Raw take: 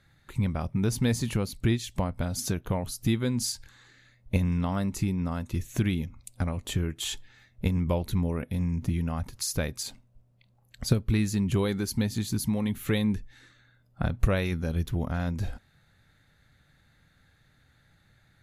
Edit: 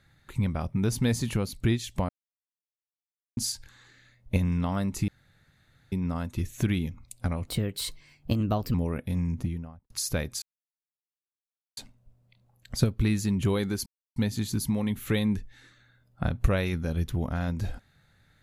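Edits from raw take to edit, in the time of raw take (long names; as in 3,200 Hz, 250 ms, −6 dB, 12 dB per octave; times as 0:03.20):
0:02.09–0:03.37: silence
0:05.08: splice in room tone 0.84 s
0:06.63–0:08.18: play speed 122%
0:08.69–0:09.34: fade out and dull
0:09.86: splice in silence 1.35 s
0:11.95: splice in silence 0.30 s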